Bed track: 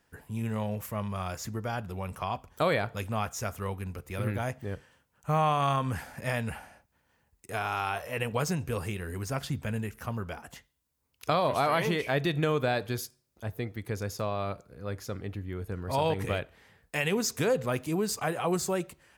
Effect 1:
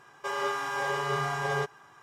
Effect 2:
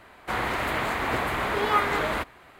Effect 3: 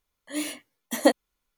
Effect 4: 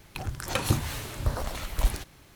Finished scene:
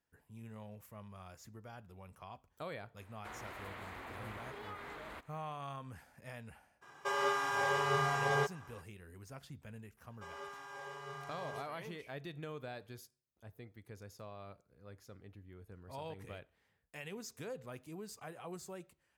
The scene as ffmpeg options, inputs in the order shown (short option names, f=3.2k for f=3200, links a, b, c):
-filter_complex "[1:a]asplit=2[a][b];[0:a]volume=-18dB[c];[2:a]acompressor=threshold=-28dB:ratio=6:attack=3.2:release=140:knee=1:detection=peak,atrim=end=2.59,asetpts=PTS-STARTPTS,volume=-16dB,afade=t=in:d=0.004:c=hsin,afade=t=out:st=2.586:d=0.004:c=hsin,adelay=2970[d];[a]atrim=end=2.02,asetpts=PTS-STARTPTS,volume=-2.5dB,afade=t=in:d=0.02,afade=t=out:st=2:d=0.02,adelay=6810[e];[b]atrim=end=2.02,asetpts=PTS-STARTPTS,volume=-17.5dB,afade=t=in:d=0.004:c=hsin,afade=t=out:st=2.016:d=0.004:c=hsin,adelay=9970[f];[c][d][e][f]amix=inputs=4:normalize=0"